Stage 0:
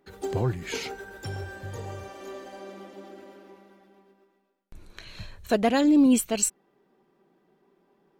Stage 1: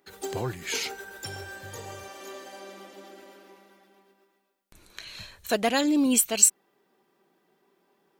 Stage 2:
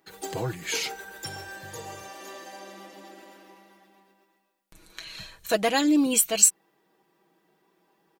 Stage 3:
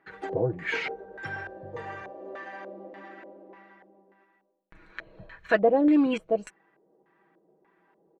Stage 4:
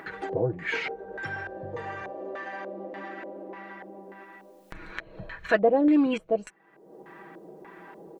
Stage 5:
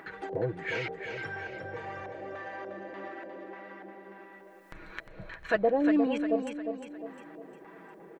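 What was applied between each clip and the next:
tilt EQ +2.5 dB/octave
comb 6.2 ms, depth 55%
LFO low-pass square 1.7 Hz 540–1800 Hz
upward compressor, threshold -30 dBFS
feedback delay 354 ms, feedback 45%, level -7 dB; trim -4.5 dB

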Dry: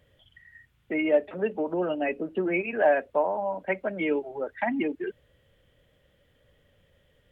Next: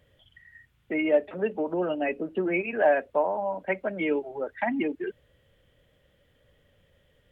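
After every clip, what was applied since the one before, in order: no audible change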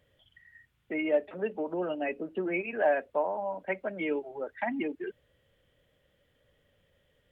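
bass shelf 160 Hz -4 dB; trim -4 dB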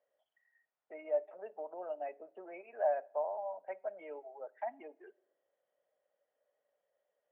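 ladder band-pass 760 Hz, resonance 55%; on a send at -21.5 dB: reverberation RT60 0.80 s, pre-delay 5 ms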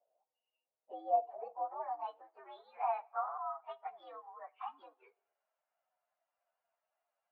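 frequency axis rescaled in octaves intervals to 120%; band-pass sweep 520 Hz -> 1.4 kHz, 1.15–2.21 s; trim +9.5 dB

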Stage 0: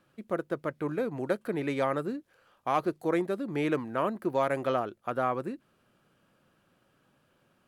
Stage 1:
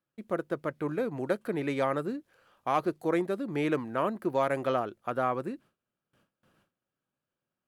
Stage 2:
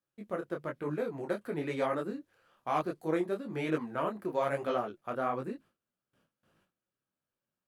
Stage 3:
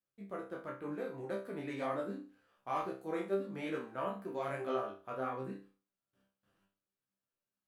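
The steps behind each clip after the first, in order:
gate with hold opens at -56 dBFS
detune thickener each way 37 cents
chord resonator C2 fifth, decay 0.37 s; trim +5.5 dB

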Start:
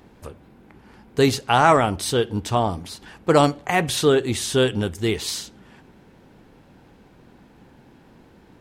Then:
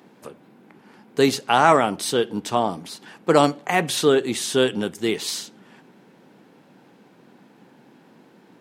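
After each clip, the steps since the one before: high-pass 160 Hz 24 dB/octave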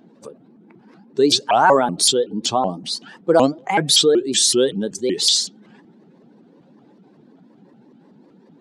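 spectral contrast enhancement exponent 1.7; high-order bell 5.8 kHz +10.5 dB; vibrato with a chosen wave saw up 5.3 Hz, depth 250 cents; trim +2 dB

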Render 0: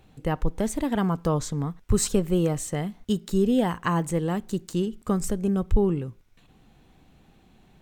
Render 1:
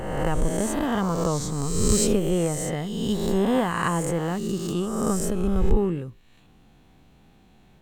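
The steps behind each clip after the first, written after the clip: reverse spectral sustain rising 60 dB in 1.49 s; trim -2 dB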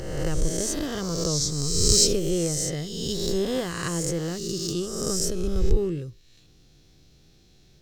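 FFT filter 150 Hz 0 dB, 220 Hz -10 dB, 340 Hz 0 dB, 570 Hz -4 dB, 890 Hz -15 dB, 1.3 kHz -7 dB, 2 kHz -4 dB, 2.9 kHz -2 dB, 5.3 kHz +15 dB, 8.3 kHz +1 dB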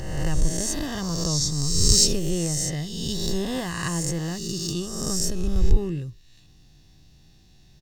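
comb 1.1 ms, depth 53%

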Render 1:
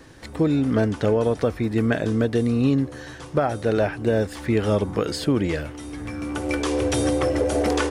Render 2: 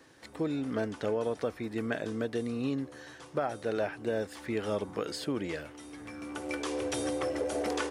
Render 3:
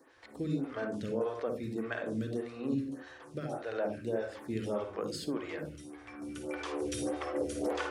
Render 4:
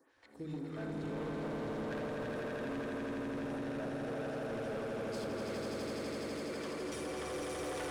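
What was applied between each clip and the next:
high-pass 310 Hz 6 dB/octave; trim -8.5 dB
on a send at -4 dB: reverberation RT60 0.35 s, pre-delay 47 ms; on the sum: lamp-driven phase shifter 1.7 Hz; trim -2 dB
echo with a slow build-up 83 ms, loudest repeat 8, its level -3 dB; hard clipper -28 dBFS, distortion -10 dB; trim -8 dB

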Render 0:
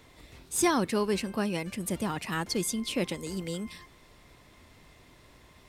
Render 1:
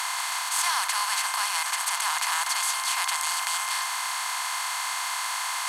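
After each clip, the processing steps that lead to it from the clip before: spectral levelling over time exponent 0.2; steep high-pass 840 Hz 48 dB/octave; trim -1.5 dB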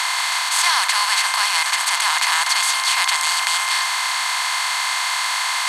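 graphic EQ 500/1000/2000/4000/8000 Hz +9/+3/+8/+9/+4 dB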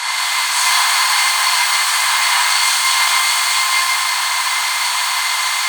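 pitch-shifted reverb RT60 1.5 s, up +12 st, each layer -8 dB, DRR -5 dB; trim -3 dB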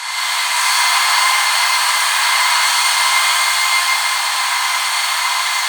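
algorithmic reverb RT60 1.7 s, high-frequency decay 0.35×, pre-delay 75 ms, DRR -3 dB; trim -3.5 dB

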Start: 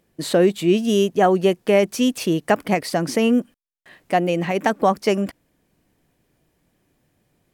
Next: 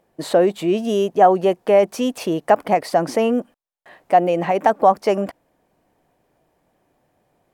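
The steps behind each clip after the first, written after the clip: in parallel at 0 dB: peak limiter -16 dBFS, peak gain reduction 11.5 dB; on the sum: peaking EQ 750 Hz +14 dB 1.8 oct; trim -10.5 dB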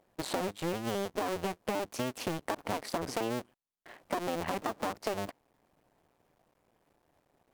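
cycle switcher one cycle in 2, muted; peak limiter -11 dBFS, peak gain reduction 9 dB; compression, threshold -26 dBFS, peak gain reduction 10 dB; trim -3.5 dB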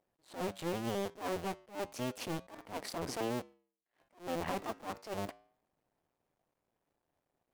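waveshaping leveller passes 2; flange 0.3 Hz, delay 7 ms, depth 2.5 ms, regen -90%; attacks held to a fixed rise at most 200 dB/s; trim -3.5 dB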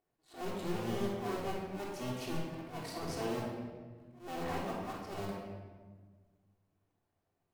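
simulated room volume 1500 m³, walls mixed, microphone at 3.4 m; trim -7 dB

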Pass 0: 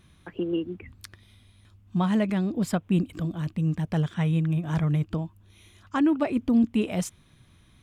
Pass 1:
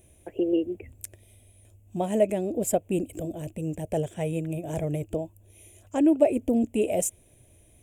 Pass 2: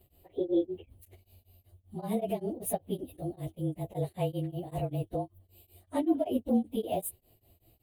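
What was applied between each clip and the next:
FFT filter 110 Hz 0 dB, 170 Hz -10 dB, 370 Hz +5 dB, 630 Hz +10 dB, 1.2 kHz -18 dB, 2.6 kHz -1 dB, 4.4 kHz -15 dB, 7.4 kHz +11 dB
frequency axis rescaled in octaves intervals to 108%; tremolo of two beating tones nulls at 5.2 Hz

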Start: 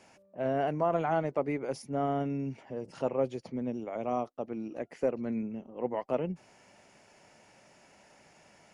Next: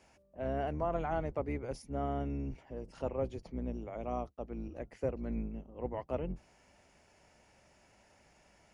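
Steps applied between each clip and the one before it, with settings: octave divider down 2 oct, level +1 dB; trim -6 dB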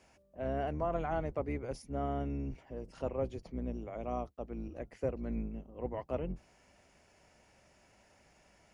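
band-stop 870 Hz, Q 21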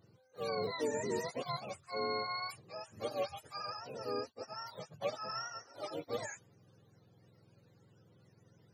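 spectrum inverted on a logarithmic axis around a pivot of 550 Hz

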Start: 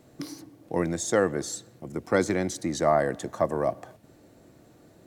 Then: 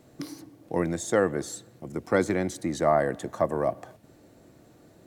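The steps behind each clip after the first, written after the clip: dynamic bell 5.5 kHz, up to -6 dB, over -49 dBFS, Q 1.3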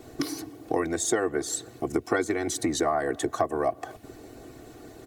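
comb 2.7 ms, depth 98%; harmonic-percussive split percussive +9 dB; compression 4:1, threshold -27 dBFS, peak gain reduction 15 dB; trim +2.5 dB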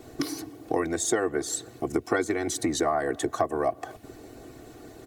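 no audible change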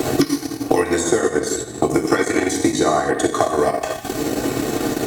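gated-style reverb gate 330 ms falling, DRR -2 dB; transient shaper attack +4 dB, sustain -10 dB; three bands compressed up and down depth 100%; trim +4.5 dB

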